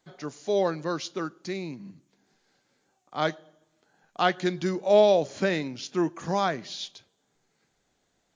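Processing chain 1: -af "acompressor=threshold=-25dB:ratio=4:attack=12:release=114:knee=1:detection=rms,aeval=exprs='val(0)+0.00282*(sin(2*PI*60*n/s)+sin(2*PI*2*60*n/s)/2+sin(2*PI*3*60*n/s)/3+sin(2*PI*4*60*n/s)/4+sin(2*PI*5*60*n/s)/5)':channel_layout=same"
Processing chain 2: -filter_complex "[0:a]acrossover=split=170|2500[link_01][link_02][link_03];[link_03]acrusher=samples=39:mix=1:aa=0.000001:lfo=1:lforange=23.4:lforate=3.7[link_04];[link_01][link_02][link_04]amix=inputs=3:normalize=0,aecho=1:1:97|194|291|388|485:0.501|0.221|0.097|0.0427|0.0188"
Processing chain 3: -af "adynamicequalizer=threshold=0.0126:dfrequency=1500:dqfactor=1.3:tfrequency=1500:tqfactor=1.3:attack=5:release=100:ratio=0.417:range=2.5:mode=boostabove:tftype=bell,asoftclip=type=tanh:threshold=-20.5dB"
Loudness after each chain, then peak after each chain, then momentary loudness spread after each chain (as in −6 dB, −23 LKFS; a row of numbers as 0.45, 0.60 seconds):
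−32.0, −26.0, −30.5 LKFS; −15.5, −7.0, −20.5 dBFS; 12, 20, 14 LU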